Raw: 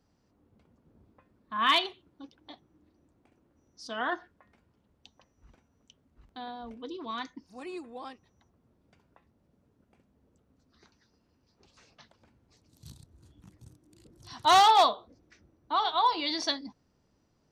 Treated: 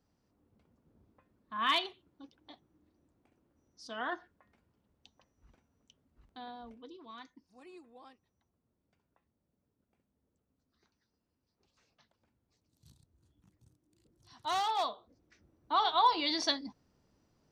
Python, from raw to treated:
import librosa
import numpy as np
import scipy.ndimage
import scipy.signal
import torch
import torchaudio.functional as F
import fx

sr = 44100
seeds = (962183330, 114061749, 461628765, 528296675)

y = fx.gain(x, sr, db=fx.line((6.59, -5.5), (7.03, -13.0), (14.67, -13.0), (15.81, -1.0)))